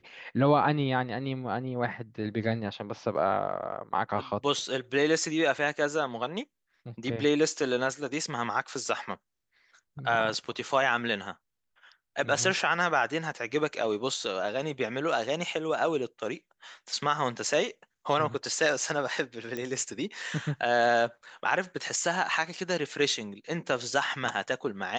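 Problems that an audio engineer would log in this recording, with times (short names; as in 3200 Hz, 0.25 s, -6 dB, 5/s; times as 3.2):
19.57 pop -20 dBFS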